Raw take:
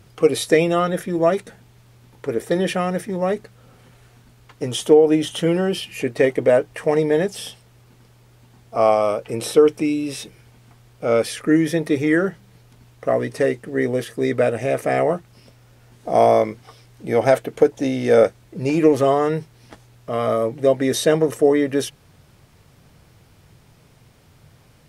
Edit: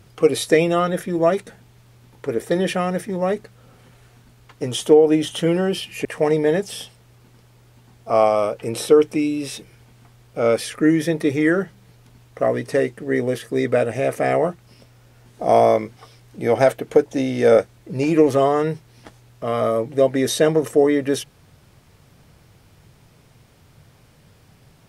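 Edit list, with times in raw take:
6.05–6.71 cut

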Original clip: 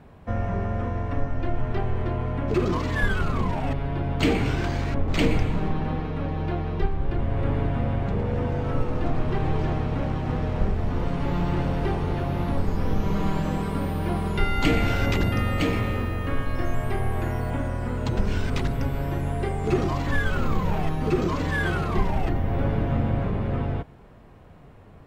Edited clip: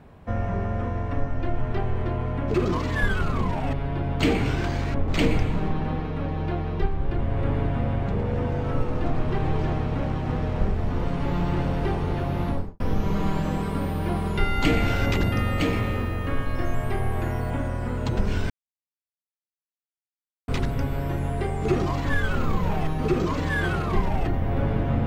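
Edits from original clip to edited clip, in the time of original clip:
12.47–12.8 studio fade out
18.5 insert silence 1.98 s

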